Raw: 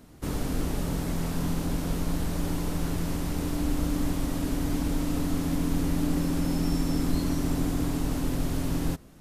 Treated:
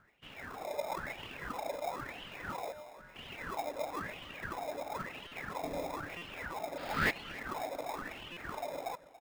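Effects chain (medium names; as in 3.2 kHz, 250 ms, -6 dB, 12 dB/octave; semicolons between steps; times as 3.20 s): 5.63–6.09 s: RIAA curve playback; reverb removal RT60 1.2 s; three-band isolator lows -19 dB, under 570 Hz, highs -14 dB, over 2.6 kHz; level rider gain up to 6.5 dB; 6.77–7.11 s: painted sound noise 1.2–5.2 kHz -28 dBFS; wah-wah 1 Hz 560–3000 Hz, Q 8.6; 2.72–3.16 s: feedback comb 86 Hz, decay 0.75 s, harmonics odd, mix 90%; in parallel at -3.5 dB: sample-rate reducer 1.5 kHz, jitter 0%; on the sum: feedback delay 283 ms, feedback 36%, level -17.5 dB; buffer glitch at 5.27/6.17/8.32 s, samples 256, times 7; trim +9 dB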